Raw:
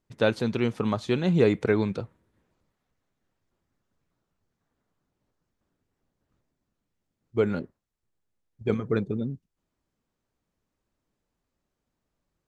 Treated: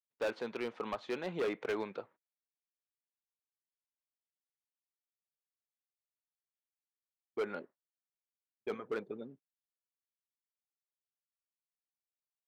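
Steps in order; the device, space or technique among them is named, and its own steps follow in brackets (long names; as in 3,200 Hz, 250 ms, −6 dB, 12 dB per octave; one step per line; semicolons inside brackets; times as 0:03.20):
walkie-talkie (band-pass filter 500–2,700 Hz; hard clipping −25.5 dBFS, distortion −9 dB; noise gate −53 dBFS, range −35 dB)
level −4.5 dB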